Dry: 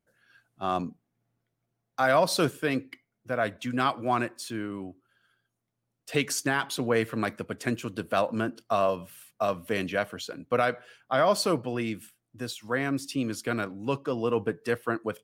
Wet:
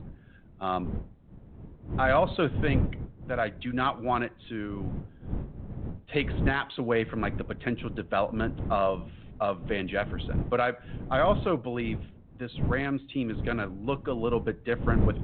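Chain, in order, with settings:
wind on the microphone 160 Hz −33 dBFS
level −1 dB
G.726 40 kbit/s 8,000 Hz

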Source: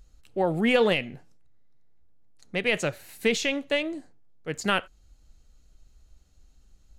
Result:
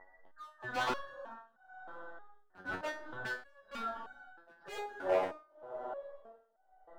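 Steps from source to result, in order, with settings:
frequency inversion band by band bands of 2,000 Hz
drawn EQ curve 170 Hz 0 dB, 880 Hz +11 dB, 2,400 Hz −29 dB
in parallel at 0 dB: speech leveller within 10 dB 0.5 s
on the sum: low-shelf EQ 190 Hz −11 dB
on a send: feedback delay with all-pass diffusion 470 ms, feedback 46%, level −11 dB
on the sum: downsampling to 11,025 Hz
gain into a clipping stage and back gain 24 dB
four-comb reverb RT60 3.6 s, combs from 28 ms, DRR 20 dB
amplitude tremolo 1 Hz, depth 95%
step-sequenced resonator 3.2 Hz 93–750 Hz
level +7.5 dB

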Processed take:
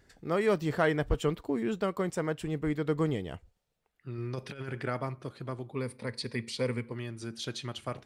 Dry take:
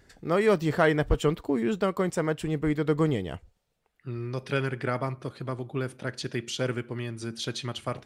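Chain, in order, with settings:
0:04.18–0:04.83: compressor whose output falls as the input rises −31 dBFS, ratio −0.5
0:05.72–0:06.92: EQ curve with evenly spaced ripples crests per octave 0.93, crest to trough 12 dB
level −4.5 dB

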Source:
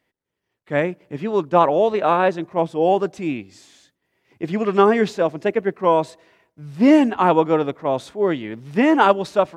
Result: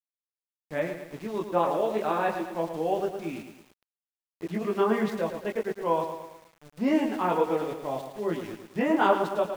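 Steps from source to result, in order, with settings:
multi-voice chorus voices 6, 0.92 Hz, delay 21 ms, depth 3 ms
centre clipping without the shift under −36 dBFS
feedback echo at a low word length 110 ms, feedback 55%, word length 7 bits, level −8 dB
level −7.5 dB

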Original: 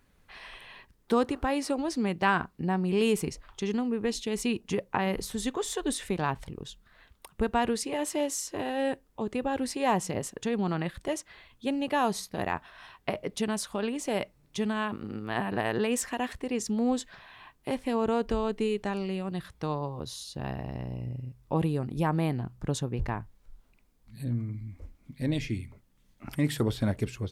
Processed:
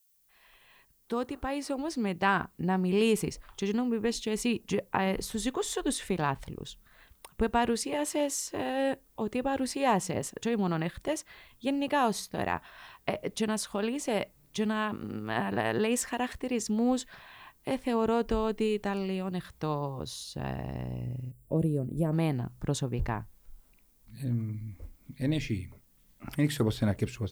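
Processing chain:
fade in at the beginning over 2.61 s
background noise violet −68 dBFS
gain on a spectral selection 0:21.31–0:22.12, 670–7,100 Hz −15 dB

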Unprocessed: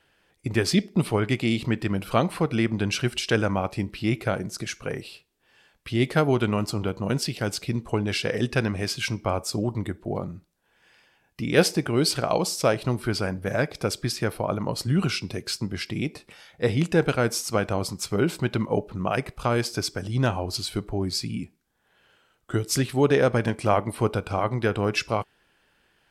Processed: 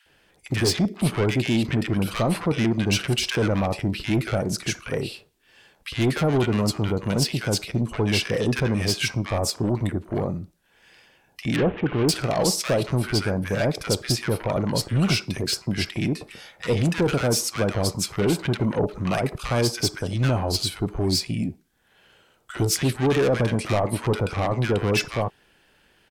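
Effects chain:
0:11.56–0:12.09: variable-slope delta modulation 16 kbit/s
soft clipping −22 dBFS, distortion −9 dB
multiband delay without the direct sound highs, lows 60 ms, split 1,200 Hz
level +6 dB

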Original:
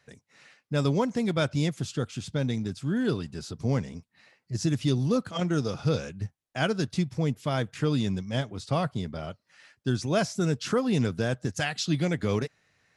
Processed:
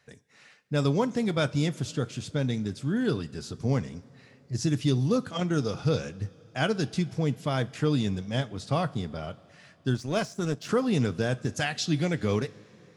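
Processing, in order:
coupled-rooms reverb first 0.26 s, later 3.6 s, from −18 dB, DRR 14 dB
0:09.94–0:10.69: power curve on the samples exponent 1.4

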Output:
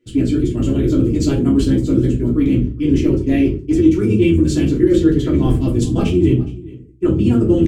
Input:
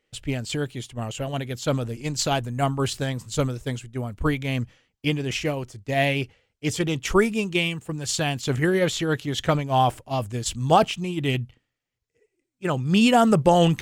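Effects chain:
sub-octave generator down 1 octave, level 0 dB
high-pass filter 110 Hz 6 dB per octave
low shelf with overshoot 490 Hz +11.5 dB, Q 3
reversed playback
downward compressor 12 to 1, threshold −14 dBFS, peak gain reduction 17 dB
reversed playback
tempo change 1.8×
on a send: single-tap delay 415 ms −20.5 dB
on the sum: rectangular room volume 160 cubic metres, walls furnished, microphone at 3 metres
level −4 dB

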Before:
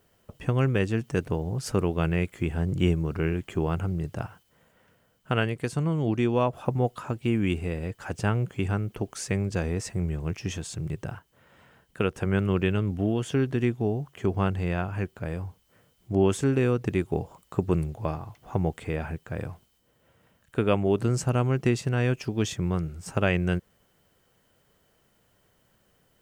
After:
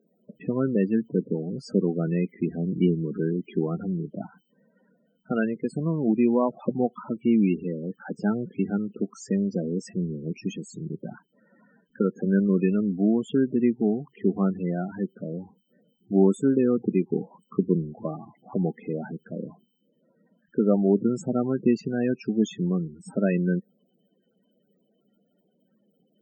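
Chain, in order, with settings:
low shelf with overshoot 140 Hz −13 dB, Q 3
spectral peaks only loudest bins 16

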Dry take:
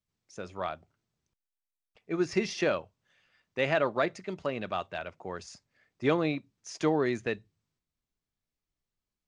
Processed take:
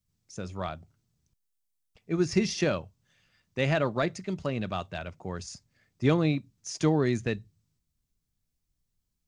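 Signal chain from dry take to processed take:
bass and treble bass +13 dB, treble +9 dB
level −1.5 dB

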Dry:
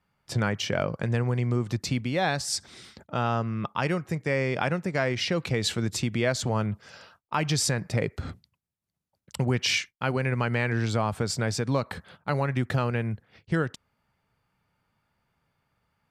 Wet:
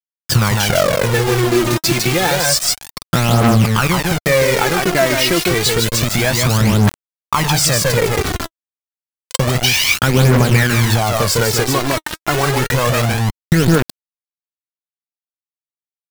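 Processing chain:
0:01.13–0:03.16: comb filter 5.7 ms, depth 74%
single-tap delay 153 ms −5 dB
downward compressor 5 to 1, threshold −30 dBFS, peak gain reduction 11 dB
bit reduction 6 bits
phase shifter 0.29 Hz, delay 3.3 ms, feedback 59%
boost into a limiter +17.5 dB
level −1 dB

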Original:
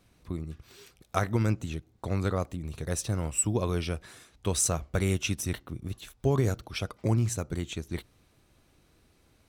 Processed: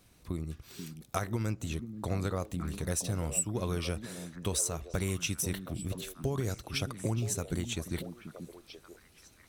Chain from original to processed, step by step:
high-shelf EQ 5,600 Hz +8.5 dB
downward compressor 5 to 1, threshold −29 dBFS, peak gain reduction 12 dB
on a send: echo through a band-pass that steps 485 ms, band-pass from 200 Hz, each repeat 1.4 octaves, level −4.5 dB

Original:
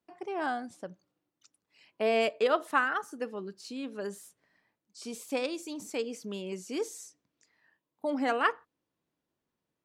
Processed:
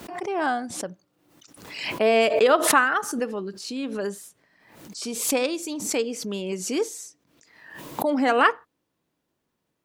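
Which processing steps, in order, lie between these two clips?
background raised ahead of every attack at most 64 dB per second
level +7.5 dB

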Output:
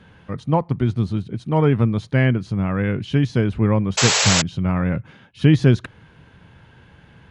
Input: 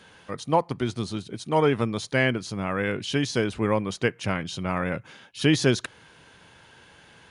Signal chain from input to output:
bass and treble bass +13 dB, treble −13 dB
sound drawn into the spectrogram noise, 0:03.97–0:04.42, 390–7,900 Hz −18 dBFS

